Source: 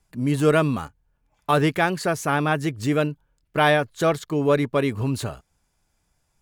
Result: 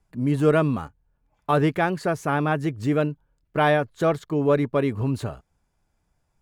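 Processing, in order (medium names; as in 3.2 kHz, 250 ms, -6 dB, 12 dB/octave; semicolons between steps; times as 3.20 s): treble shelf 2.3 kHz -10 dB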